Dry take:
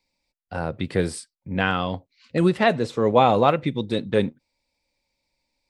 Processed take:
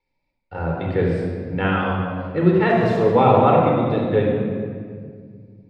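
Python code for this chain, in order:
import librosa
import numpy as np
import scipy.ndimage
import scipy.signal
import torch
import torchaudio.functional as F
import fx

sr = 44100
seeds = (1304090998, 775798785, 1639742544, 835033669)

y = fx.crossing_spikes(x, sr, level_db=-21.5, at=(2.69, 3.11))
y = scipy.signal.sosfilt(scipy.signal.butter(2, 2400.0, 'lowpass', fs=sr, output='sos'), y)
y = fx.room_shoebox(y, sr, seeds[0], volume_m3=3700.0, walls='mixed', distance_m=4.3)
y = F.gain(torch.from_numpy(y), -3.0).numpy()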